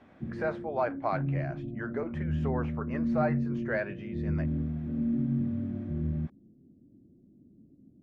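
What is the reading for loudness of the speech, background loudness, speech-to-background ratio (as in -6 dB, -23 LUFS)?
-35.5 LUFS, -33.0 LUFS, -2.5 dB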